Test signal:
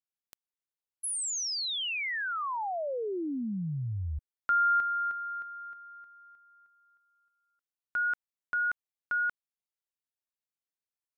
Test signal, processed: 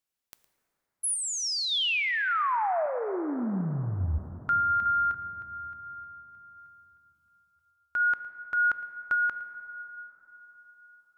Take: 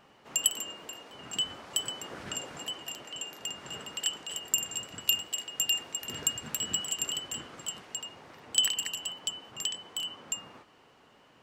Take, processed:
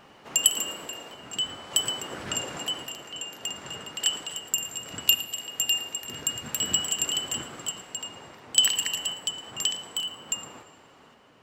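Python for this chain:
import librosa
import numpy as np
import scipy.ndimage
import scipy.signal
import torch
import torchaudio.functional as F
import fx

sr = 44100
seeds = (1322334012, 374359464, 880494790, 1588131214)

p1 = fx.tremolo_random(x, sr, seeds[0], hz=3.5, depth_pct=55)
p2 = p1 + fx.echo_single(p1, sr, ms=112, db=-18.5, dry=0)
p3 = fx.rev_plate(p2, sr, seeds[1], rt60_s=4.3, hf_ratio=0.3, predelay_ms=0, drr_db=10.5)
y = F.gain(torch.from_numpy(p3), 7.0).numpy()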